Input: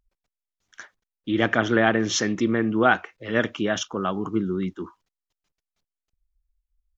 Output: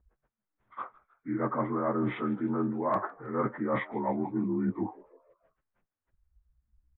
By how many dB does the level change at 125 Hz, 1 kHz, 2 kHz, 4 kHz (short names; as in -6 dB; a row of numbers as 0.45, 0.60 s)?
-5.5 dB, -5.5 dB, -17.0 dB, under -20 dB